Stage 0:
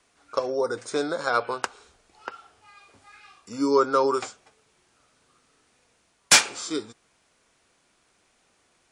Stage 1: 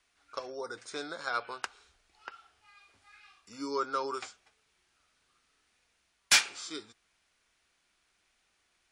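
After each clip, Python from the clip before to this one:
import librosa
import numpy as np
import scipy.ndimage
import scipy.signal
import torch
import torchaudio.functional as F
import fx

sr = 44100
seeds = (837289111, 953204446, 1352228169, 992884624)

y = fx.graphic_eq_10(x, sr, hz=(125, 250, 500, 1000, 8000), db=(-10, -7, -9, -5, -6))
y = y * librosa.db_to_amplitude(-4.0)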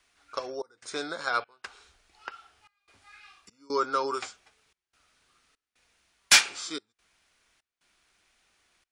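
y = fx.step_gate(x, sr, bpm=73, pattern='xxx.xxx.xx', floor_db=-24.0, edge_ms=4.5)
y = y * librosa.db_to_amplitude(5.0)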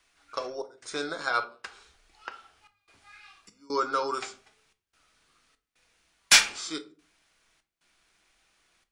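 y = fx.room_shoebox(x, sr, seeds[0], volume_m3=250.0, walls='furnished', distance_m=0.66)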